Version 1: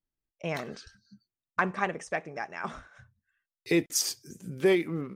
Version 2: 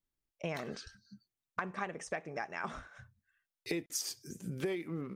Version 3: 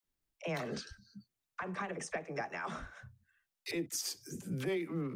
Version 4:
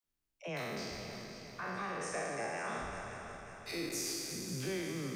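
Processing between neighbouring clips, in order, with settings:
downward compressor 6 to 1, threshold −34 dBFS, peak gain reduction 14 dB
brickwall limiter −29 dBFS, peak gain reduction 9 dB; all-pass dispersion lows, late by 48 ms, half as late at 390 Hz; level +2.5 dB
peak hold with a decay on every bin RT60 2.10 s; echo machine with several playback heads 181 ms, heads second and third, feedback 55%, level −11 dB; level −5.5 dB

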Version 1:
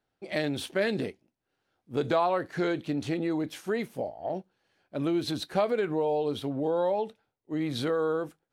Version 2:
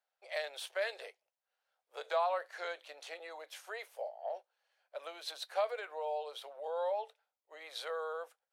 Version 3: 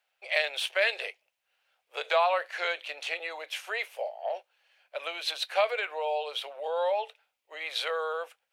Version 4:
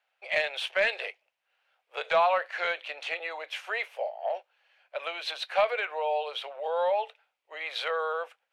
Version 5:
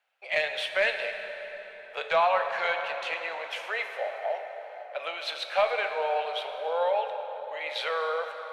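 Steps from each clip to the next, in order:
Butterworth high-pass 520 Hz 48 dB per octave; level −6 dB
parametric band 2,600 Hz +12 dB 0.91 octaves; level +6.5 dB
mid-hump overdrive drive 9 dB, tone 1,700 Hz, clips at −10 dBFS
dense smooth reverb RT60 4.7 s, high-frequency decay 0.6×, DRR 5 dB

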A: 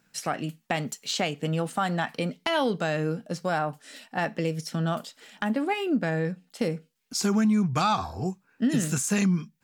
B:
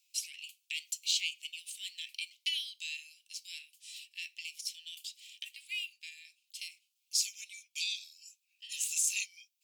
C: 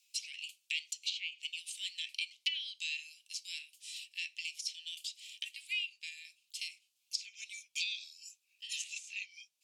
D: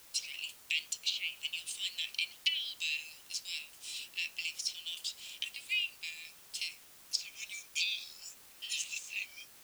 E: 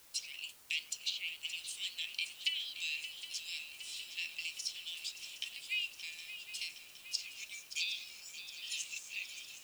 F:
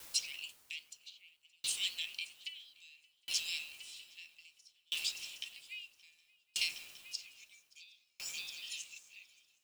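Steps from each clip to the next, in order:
Butterworth high-pass 2,400 Hz 72 dB per octave
treble cut that deepens with the level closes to 1,900 Hz, closed at −29.5 dBFS; level +2.5 dB
bit-depth reduction 10 bits, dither triangular; level +3 dB
feedback echo with a long and a short gap by turns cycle 765 ms, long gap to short 3 to 1, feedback 63%, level −12 dB; level −3.5 dB
tremolo with a ramp in dB decaying 0.61 Hz, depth 38 dB; level +9 dB

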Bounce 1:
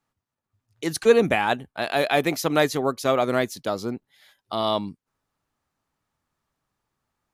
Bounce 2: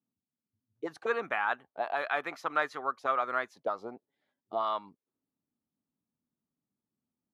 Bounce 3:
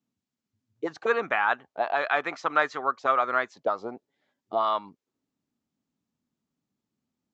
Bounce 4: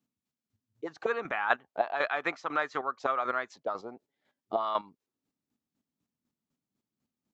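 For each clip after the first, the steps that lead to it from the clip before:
envelope filter 230–1,300 Hz, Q 2.7, up, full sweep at −21 dBFS
Butterworth low-pass 7,800 Hz 96 dB per octave; level +6 dB
square-wave tremolo 4 Hz, depth 60%, duty 25%; level +1 dB

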